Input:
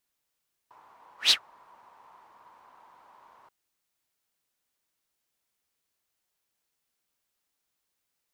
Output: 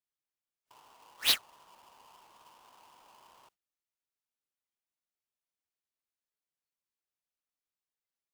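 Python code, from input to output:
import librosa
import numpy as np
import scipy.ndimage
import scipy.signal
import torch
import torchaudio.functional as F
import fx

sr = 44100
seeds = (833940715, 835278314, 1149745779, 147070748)

y = fx.halfwave_hold(x, sr)
y = fx.noise_reduce_blind(y, sr, reduce_db=13)
y = F.gain(torch.from_numpy(y), -7.0).numpy()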